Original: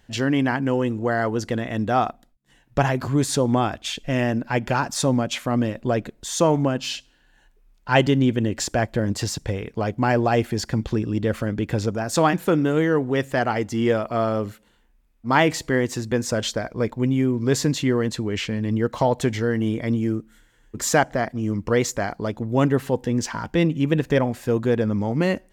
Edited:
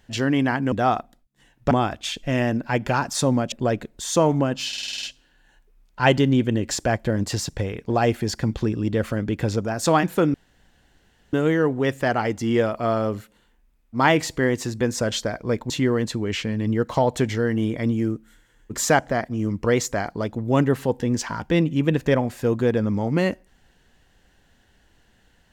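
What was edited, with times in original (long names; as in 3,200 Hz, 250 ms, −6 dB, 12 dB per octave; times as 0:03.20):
0:00.72–0:01.82: remove
0:02.81–0:03.52: remove
0:05.33–0:05.76: remove
0:06.92: stutter 0.05 s, 8 plays
0:09.79–0:10.20: remove
0:12.64: splice in room tone 0.99 s
0:17.01–0:17.74: remove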